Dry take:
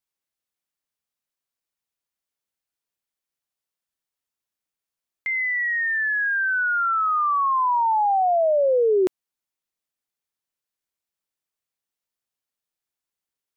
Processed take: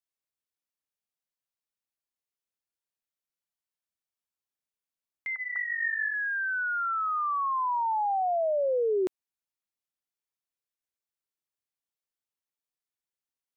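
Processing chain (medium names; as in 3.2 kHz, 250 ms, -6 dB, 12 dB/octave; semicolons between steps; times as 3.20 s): 5.35–6.14 s: formants replaced by sine waves; trim -7.5 dB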